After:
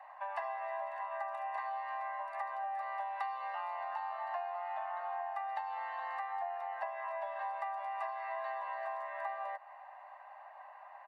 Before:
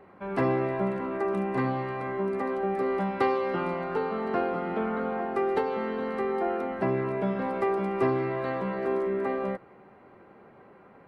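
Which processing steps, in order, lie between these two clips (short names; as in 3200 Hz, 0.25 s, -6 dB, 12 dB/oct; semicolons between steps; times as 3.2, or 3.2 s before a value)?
steep high-pass 590 Hz 96 dB/oct; high shelf 2600 Hz -10.5 dB; comb 1.1 ms, depth 79%; compressor 5:1, threshold -41 dBFS, peak gain reduction 16.5 dB; gain +3.5 dB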